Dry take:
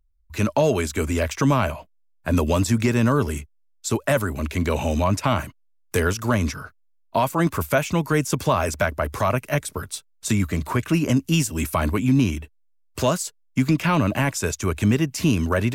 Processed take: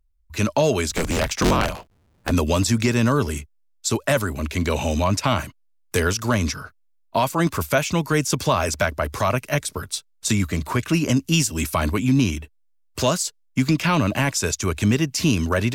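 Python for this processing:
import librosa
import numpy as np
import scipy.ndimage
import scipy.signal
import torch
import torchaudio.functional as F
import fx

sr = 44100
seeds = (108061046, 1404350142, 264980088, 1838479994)

y = fx.cycle_switch(x, sr, every=3, mode='inverted', at=(0.89, 2.31))
y = fx.dynamic_eq(y, sr, hz=4800.0, q=0.88, threshold_db=-44.0, ratio=4.0, max_db=7)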